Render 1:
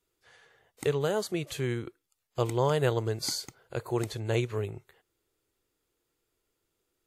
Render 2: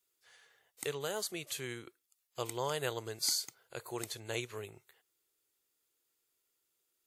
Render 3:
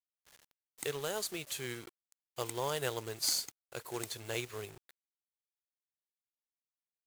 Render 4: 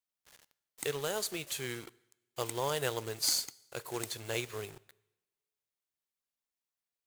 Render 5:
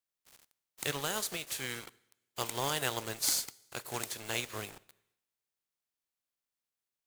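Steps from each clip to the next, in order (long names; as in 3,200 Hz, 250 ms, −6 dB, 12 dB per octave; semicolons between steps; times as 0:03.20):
spectral tilt +3 dB per octave; level −7 dB
log-companded quantiser 4 bits
coupled-rooms reverb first 0.93 s, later 2.5 s, from −28 dB, DRR 20 dB; level +2 dB
ceiling on every frequency bin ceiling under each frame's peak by 13 dB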